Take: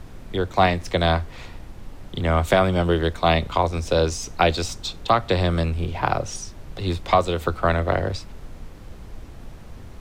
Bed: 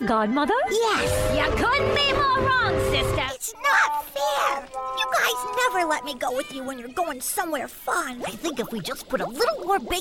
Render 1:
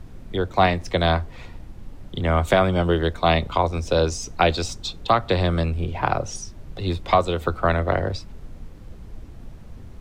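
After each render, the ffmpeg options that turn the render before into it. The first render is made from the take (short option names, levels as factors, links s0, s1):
-af "afftdn=nr=6:nf=-41"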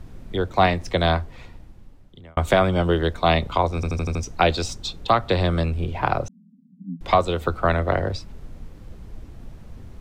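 -filter_complex "[0:a]asettb=1/sr,asplit=3[s0][s1][s2];[s0]atrim=end=6.284[s3];[s1]atrim=start=6.28:end=7.01,asetpts=PTS-STARTPTS,afade=t=in:d=0.004:c=qsin,afade=t=out:st=0.726:d=0.004:c=qsin,asuperpass=centerf=210:order=12:qfactor=2.1[s4];[s2]atrim=start=7.006[s5];[s3][s4]acrossfade=d=0.004:c1=hsin:c2=qsin[s6];[s6][s5]acrossfade=d=0.004:c1=qsin:c2=hsin,asplit=8[s7][s8][s9][s10][s11][s12][s13][s14];[s7]atrim=end=2.37,asetpts=PTS-STARTPTS,afade=t=out:st=1.06:d=1.31[s15];[s8]atrim=start=2.37:end=3.832,asetpts=PTS-STARTPTS,afade=t=in:d=0.004:c=hsin[s16];[s9]atrim=start=3.748:end=3.832[s17];[s10]atrim=start=3.748:end=3.832[s18];[s11]atrim=start=3.748:end=3.832[s19];[s12]atrim=start=3.748:end=3.832[s20];[s13]atrim=start=3.748:end=3.832[s21];[s14]atrim=start=4.228[s22];[s15][s16]concat=n=2:v=0:a=1[s23];[s23][s17]acrossfade=d=0.004:c1=hsin:c2=hsin[s24];[s24][s18]acrossfade=d=0.004:c1=hsin:c2=hsin[s25];[s25][s19]acrossfade=d=0.004:c1=hsin:c2=hsin[s26];[s26][s20]acrossfade=d=0.004:c1=hsin:c2=hsin[s27];[s27][s21]acrossfade=d=0.004:c1=hsin:c2=hsin[s28];[s28][s22]acrossfade=d=0.004:c1=hsin:c2=hsin"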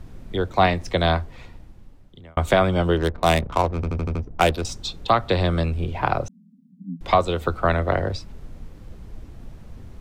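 -filter_complex "[0:a]asettb=1/sr,asplit=3[s0][s1][s2];[s0]atrim=end=2.974[s3];[s1]atrim=start=2.97:end=4.65,asetpts=PTS-STARTPTS,afade=t=in:d=0.004:c=qsin,afade=t=out:st=1.676:d=0.004:c=qsin,adynamicsmooth=sensitivity=2.5:basefreq=510[s4];[s2]atrim=start=4.646[s5];[s3][s4]acrossfade=d=0.004:c1=hsin:c2=qsin[s6];[s6][s5]acrossfade=d=0.004:c1=qsin:c2=hsin"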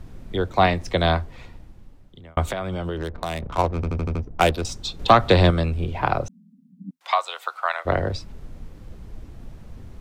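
-filter_complex "[0:a]asettb=1/sr,asplit=3[s0][s1][s2];[s0]atrim=end=2.494[s3];[s1]atrim=start=2.49:end=3.58,asetpts=PTS-STARTPTS,afade=t=in:d=0.004:c=qsin,afade=t=out:st=1.086:d=0.004:c=qsin,acompressor=threshold=0.0631:ratio=6:attack=3.2:release=140:knee=1:detection=peak[s4];[s2]atrim=start=3.576[s5];[s3][s4]acrossfade=d=0.004:c1=hsin:c2=qsin[s6];[s6][s5]acrossfade=d=0.004:c1=qsin:c2=hsin,asettb=1/sr,asplit=3[s7][s8][s9];[s7]atrim=end=4.994[s10];[s8]atrim=start=4.99:end=5.51,asetpts=PTS-STARTPTS,afade=t=in:d=0.004:c=qsin,afade=t=out:st=0.516:d=0.004:c=qsin,acontrast=50[s11];[s9]atrim=start=5.506[s12];[s10][s11]acrossfade=d=0.004:c1=hsin:c2=qsin[s13];[s13][s12]acrossfade=d=0.004:c1=qsin:c2=hsin,asplit=3[s14][s15][s16];[s14]afade=t=out:st=6.89:d=0.02[s17];[s15]highpass=f=800:w=0.5412,highpass=f=800:w=1.3066,afade=t=in:st=6.89:d=0.02,afade=t=out:st=7.85:d=0.02[s18];[s16]afade=t=in:st=7.85:d=0.02[s19];[s17][s18][s19]amix=inputs=3:normalize=0"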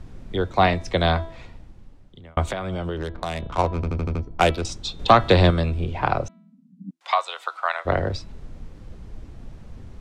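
-af "lowpass=9000,bandreject=f=328.8:t=h:w=4,bandreject=f=657.6:t=h:w=4,bandreject=f=986.4:t=h:w=4,bandreject=f=1315.2:t=h:w=4,bandreject=f=1644:t=h:w=4,bandreject=f=1972.8:t=h:w=4,bandreject=f=2301.6:t=h:w=4,bandreject=f=2630.4:t=h:w=4,bandreject=f=2959.2:t=h:w=4,bandreject=f=3288:t=h:w=4,bandreject=f=3616.8:t=h:w=4,bandreject=f=3945.6:t=h:w=4,bandreject=f=4274.4:t=h:w=4"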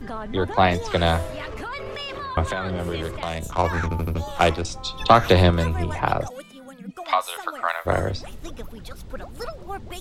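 -filter_complex "[1:a]volume=0.266[s0];[0:a][s0]amix=inputs=2:normalize=0"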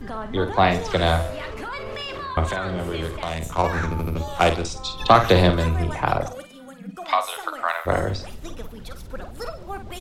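-filter_complex "[0:a]asplit=2[s0][s1];[s1]adelay=50,volume=0.355[s2];[s0][s2]amix=inputs=2:normalize=0,aecho=1:1:145:0.0944"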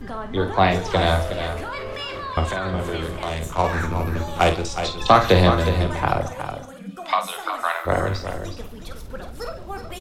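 -filter_complex "[0:a]asplit=2[s0][s1];[s1]adelay=21,volume=0.266[s2];[s0][s2]amix=inputs=2:normalize=0,aecho=1:1:367:0.355"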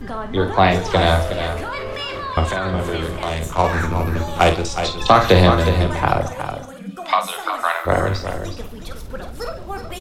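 -af "volume=1.5,alimiter=limit=0.891:level=0:latency=1"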